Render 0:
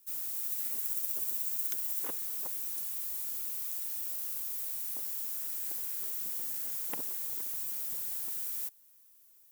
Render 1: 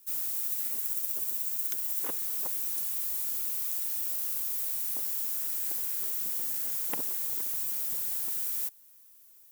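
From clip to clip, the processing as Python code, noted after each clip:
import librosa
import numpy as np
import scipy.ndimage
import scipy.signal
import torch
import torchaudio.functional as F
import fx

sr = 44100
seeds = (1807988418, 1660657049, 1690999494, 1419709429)

y = fx.rider(x, sr, range_db=10, speed_s=0.5)
y = y * 10.0 ** (4.0 / 20.0)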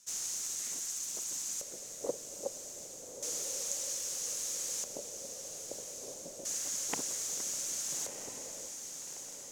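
y = fx.filter_lfo_lowpass(x, sr, shape='square', hz=0.31, low_hz=550.0, high_hz=6500.0, q=5.3)
y = fx.echo_diffused(y, sr, ms=1283, feedback_pct=54, wet_db=-7.5)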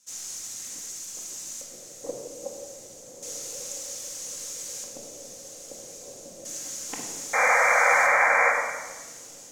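y = fx.spec_paint(x, sr, seeds[0], shape='noise', start_s=7.33, length_s=1.19, low_hz=460.0, high_hz=2400.0, level_db=-22.0)
y = fx.room_shoebox(y, sr, seeds[1], volume_m3=1100.0, walls='mixed', distance_m=2.1)
y = y * 10.0 ** (-2.0 / 20.0)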